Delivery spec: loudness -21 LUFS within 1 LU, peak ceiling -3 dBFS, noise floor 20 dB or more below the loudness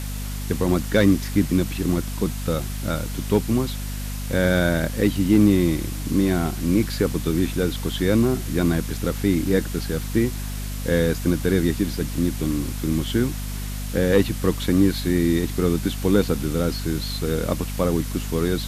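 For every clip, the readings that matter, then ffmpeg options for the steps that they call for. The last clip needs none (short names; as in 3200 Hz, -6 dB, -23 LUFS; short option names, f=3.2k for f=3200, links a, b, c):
hum 50 Hz; harmonics up to 250 Hz; hum level -27 dBFS; noise floor -29 dBFS; noise floor target -43 dBFS; loudness -22.5 LUFS; peak -5.5 dBFS; loudness target -21.0 LUFS
-> -af "bandreject=f=50:t=h:w=6,bandreject=f=100:t=h:w=6,bandreject=f=150:t=h:w=6,bandreject=f=200:t=h:w=6,bandreject=f=250:t=h:w=6"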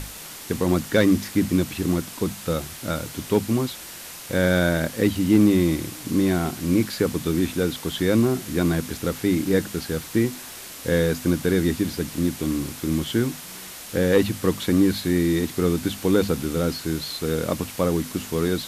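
hum none; noise floor -39 dBFS; noise floor target -43 dBFS
-> -af "afftdn=nr=6:nf=-39"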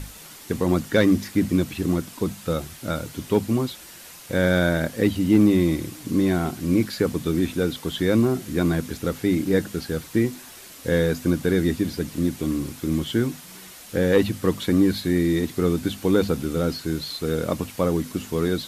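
noise floor -43 dBFS; noise floor target -44 dBFS
-> -af "afftdn=nr=6:nf=-43"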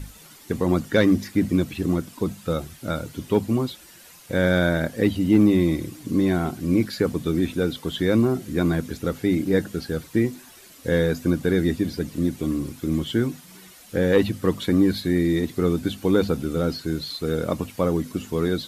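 noise floor -48 dBFS; loudness -23.5 LUFS; peak -6.0 dBFS; loudness target -21.0 LUFS
-> -af "volume=2.5dB"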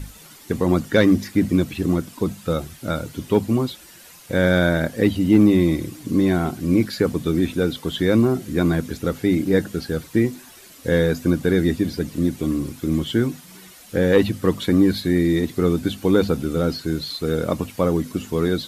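loudness -21.0 LUFS; peak -3.5 dBFS; noise floor -45 dBFS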